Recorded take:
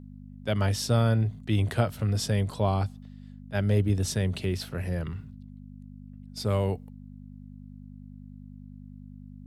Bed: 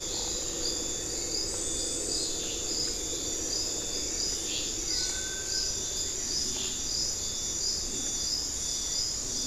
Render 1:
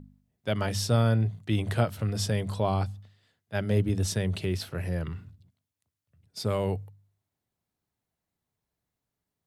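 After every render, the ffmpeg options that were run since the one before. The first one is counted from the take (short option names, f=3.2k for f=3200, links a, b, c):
-af "bandreject=f=50:t=h:w=4,bandreject=f=100:t=h:w=4,bandreject=f=150:t=h:w=4,bandreject=f=200:t=h:w=4,bandreject=f=250:t=h:w=4"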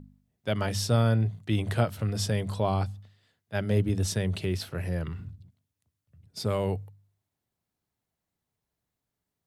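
-filter_complex "[0:a]asettb=1/sr,asplit=3[a][b][c];[a]atrim=end=5.194[d];[b]atrim=start=5.19:end=6.45,asetpts=PTS-STARTPTS,afade=t=in:d=0.004:c=qsin,afade=t=out:st=1.256:d=0.004:c=qsin,lowshelf=f=350:g=8[e];[c]atrim=start=6.446[f];[d][e]acrossfade=d=0.004:c1=hsin:c2=qsin[g];[g][f]acrossfade=d=0.004:c1=qsin:c2=hsin"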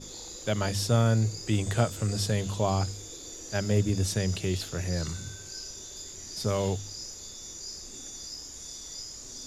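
-filter_complex "[1:a]volume=-10dB[a];[0:a][a]amix=inputs=2:normalize=0"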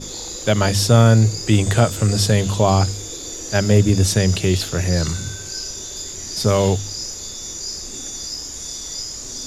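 -af "volume=11.5dB,alimiter=limit=-3dB:level=0:latency=1"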